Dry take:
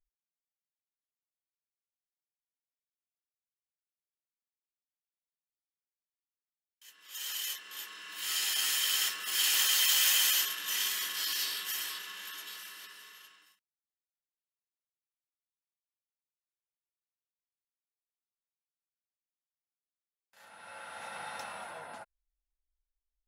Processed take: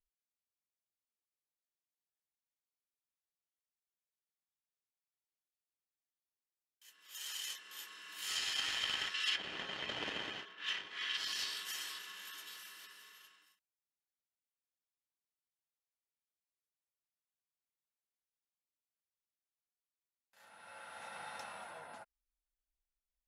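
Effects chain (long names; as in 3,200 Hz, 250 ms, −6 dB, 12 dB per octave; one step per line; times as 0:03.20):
harmonic generator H 3 −11 dB, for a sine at −13 dBFS
0:09.14–0:11.17: meter weighting curve D
treble cut that deepens with the level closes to 700 Hz, closed at −33 dBFS
level +10.5 dB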